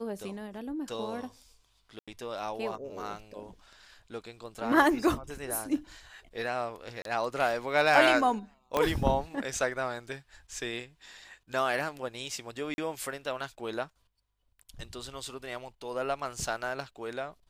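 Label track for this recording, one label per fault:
1.990000	2.080000	dropout 86 ms
7.020000	7.050000	dropout 32 ms
8.770000	8.770000	pop -13 dBFS
12.740000	12.780000	dropout 41 ms

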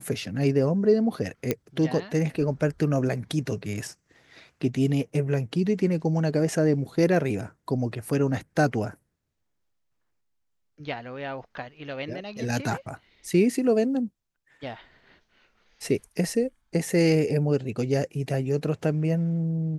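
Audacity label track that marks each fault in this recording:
1.510000	1.510000	pop -10 dBFS

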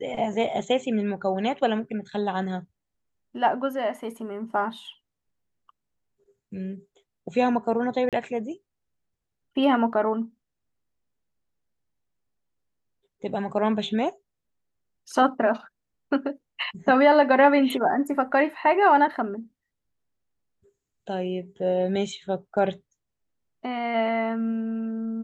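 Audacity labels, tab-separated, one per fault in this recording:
8.090000	8.130000	dropout 37 ms

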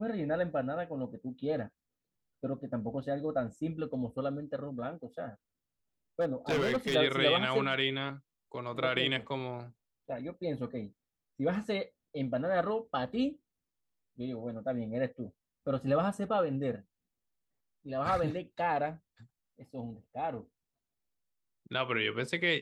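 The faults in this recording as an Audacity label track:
6.200000	6.960000	clipped -26 dBFS

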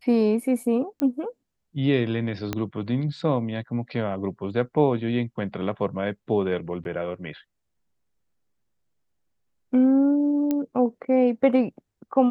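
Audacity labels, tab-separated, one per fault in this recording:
1.000000	1.000000	pop -14 dBFS
2.530000	2.530000	pop -12 dBFS
6.840000	6.850000	dropout 11 ms
10.510000	10.510000	pop -13 dBFS

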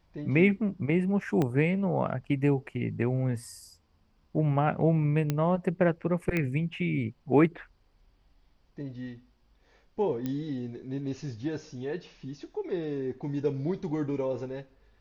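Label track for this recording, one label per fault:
1.420000	1.420000	pop -16 dBFS
5.300000	5.300000	pop -14 dBFS
6.370000	6.370000	pop -16 dBFS
10.260000	10.260000	pop -20 dBFS

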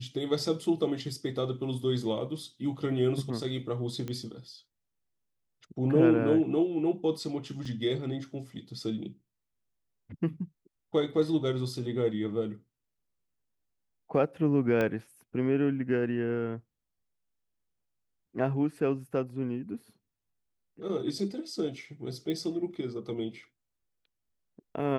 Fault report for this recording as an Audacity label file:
4.080000	4.080000	pop -23 dBFS
7.650000	7.650000	dropout 4.5 ms
14.810000	14.810000	pop -17 dBFS
22.300000	22.300000	pop -23 dBFS

